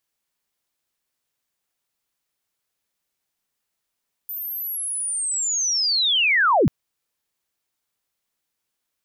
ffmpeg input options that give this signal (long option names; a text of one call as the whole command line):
ffmpeg -f lavfi -i "aevalsrc='pow(10,(-28+15*t/2.39)/20)*sin(2*PI*(14000*t-13912*t*t/(2*2.39)))':duration=2.39:sample_rate=44100" out.wav